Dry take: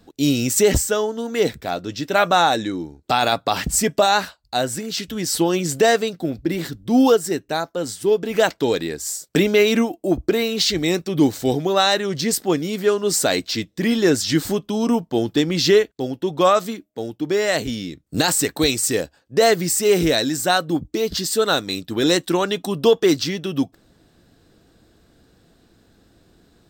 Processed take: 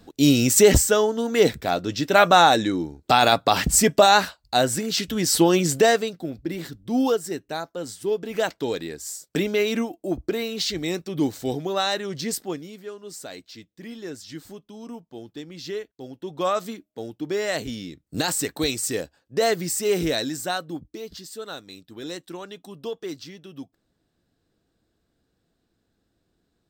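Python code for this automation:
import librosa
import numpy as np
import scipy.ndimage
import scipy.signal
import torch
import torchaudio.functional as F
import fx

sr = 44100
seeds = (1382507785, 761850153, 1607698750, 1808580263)

y = fx.gain(x, sr, db=fx.line((5.62, 1.5), (6.26, -7.0), (12.36, -7.0), (12.85, -19.0), (15.58, -19.0), (16.68, -6.0), (20.23, -6.0), (21.27, -17.0)))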